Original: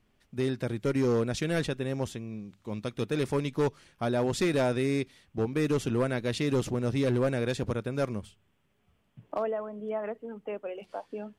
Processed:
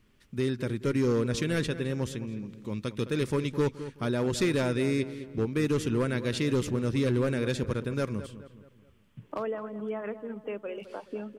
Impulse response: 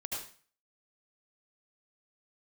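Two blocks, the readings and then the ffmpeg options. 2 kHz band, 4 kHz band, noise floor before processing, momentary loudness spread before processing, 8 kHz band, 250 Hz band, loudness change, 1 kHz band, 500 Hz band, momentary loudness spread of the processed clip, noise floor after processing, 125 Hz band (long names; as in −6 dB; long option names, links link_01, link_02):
+1.0 dB, +1.0 dB, −71 dBFS, 12 LU, +1.5 dB, +1.0 dB, +0.5 dB, −2.5 dB, −0.5 dB, 11 LU, −61 dBFS, +1.5 dB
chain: -filter_complex "[0:a]equalizer=frequency=720:width=2.7:gain=-10.5,asplit=2[link_01][link_02];[link_02]acompressor=threshold=-43dB:ratio=6,volume=-2dB[link_03];[link_01][link_03]amix=inputs=2:normalize=0,asplit=2[link_04][link_05];[link_05]adelay=212,lowpass=frequency=2400:poles=1,volume=-12.5dB,asplit=2[link_06][link_07];[link_07]adelay=212,lowpass=frequency=2400:poles=1,volume=0.45,asplit=2[link_08][link_09];[link_09]adelay=212,lowpass=frequency=2400:poles=1,volume=0.45,asplit=2[link_10][link_11];[link_11]adelay=212,lowpass=frequency=2400:poles=1,volume=0.45[link_12];[link_04][link_06][link_08][link_10][link_12]amix=inputs=5:normalize=0"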